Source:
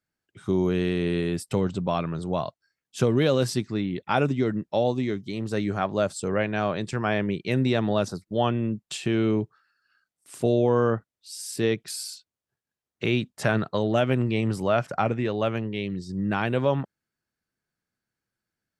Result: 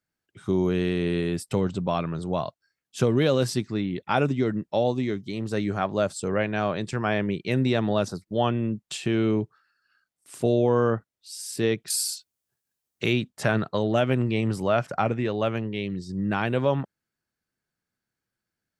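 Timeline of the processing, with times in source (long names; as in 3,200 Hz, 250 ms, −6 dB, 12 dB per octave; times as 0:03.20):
0:11.90–0:13.13: high-shelf EQ 5,200 Hz +12 dB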